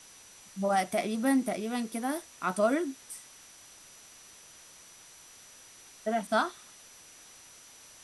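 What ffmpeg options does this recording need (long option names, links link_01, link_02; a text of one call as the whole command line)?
ffmpeg -i in.wav -af "bandreject=frequency=5900:width=30,afwtdn=0.0025" out.wav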